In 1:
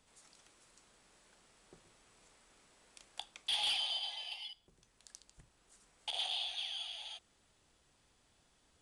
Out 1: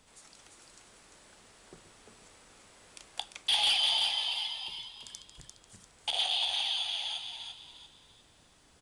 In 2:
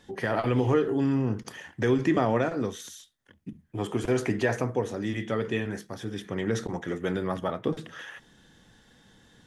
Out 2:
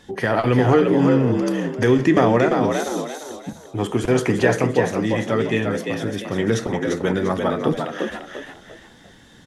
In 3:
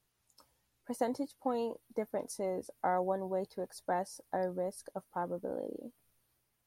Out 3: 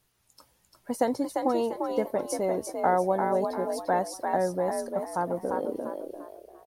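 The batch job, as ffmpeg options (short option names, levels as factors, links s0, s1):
-filter_complex "[0:a]asplit=5[s0][s1][s2][s3][s4];[s1]adelay=346,afreqshift=58,volume=0.562[s5];[s2]adelay=692,afreqshift=116,volume=0.191[s6];[s3]adelay=1038,afreqshift=174,volume=0.0653[s7];[s4]adelay=1384,afreqshift=232,volume=0.0221[s8];[s0][s5][s6][s7][s8]amix=inputs=5:normalize=0,volume=2.37"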